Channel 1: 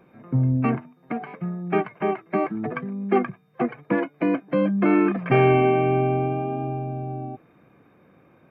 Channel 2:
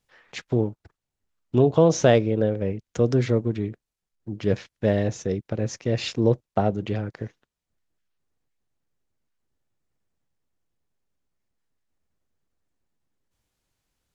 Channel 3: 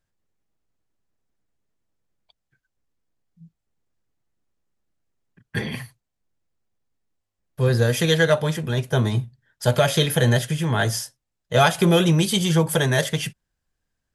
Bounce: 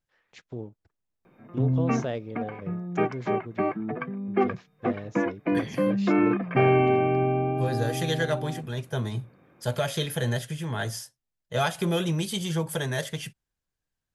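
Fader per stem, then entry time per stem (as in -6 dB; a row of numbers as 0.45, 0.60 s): -3.0, -14.5, -9.0 dB; 1.25, 0.00, 0.00 s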